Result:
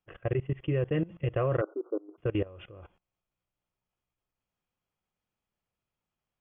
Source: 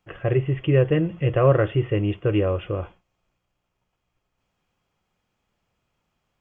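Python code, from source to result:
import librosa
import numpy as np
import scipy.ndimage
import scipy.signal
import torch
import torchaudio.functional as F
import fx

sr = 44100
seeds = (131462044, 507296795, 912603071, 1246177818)

y = fx.level_steps(x, sr, step_db=21)
y = fx.brickwall_bandpass(y, sr, low_hz=250.0, high_hz=1500.0, at=(1.61, 2.18))
y = y * librosa.db_to_amplitude(-5.5)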